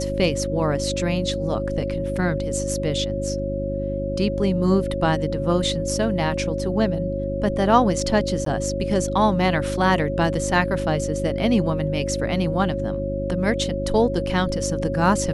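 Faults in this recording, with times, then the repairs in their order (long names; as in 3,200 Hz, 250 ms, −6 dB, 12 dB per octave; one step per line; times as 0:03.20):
mains hum 50 Hz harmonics 7 −28 dBFS
whistle 550 Hz −26 dBFS
0:08.45–0:08.46: drop-out 13 ms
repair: hum removal 50 Hz, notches 7
notch filter 550 Hz, Q 30
repair the gap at 0:08.45, 13 ms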